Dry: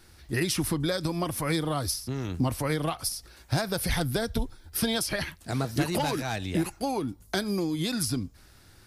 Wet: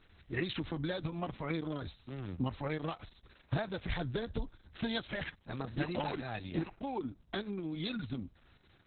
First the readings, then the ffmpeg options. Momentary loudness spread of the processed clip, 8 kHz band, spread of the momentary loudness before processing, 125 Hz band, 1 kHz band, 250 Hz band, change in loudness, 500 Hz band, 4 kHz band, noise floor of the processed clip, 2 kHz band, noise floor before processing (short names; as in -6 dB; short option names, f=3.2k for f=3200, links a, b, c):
7 LU, under -40 dB, 6 LU, -9.0 dB, -9.0 dB, -8.5 dB, -9.5 dB, -8.5 dB, -11.0 dB, -65 dBFS, -8.0 dB, -55 dBFS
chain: -af "volume=-7dB" -ar 48000 -c:a libopus -b:a 6k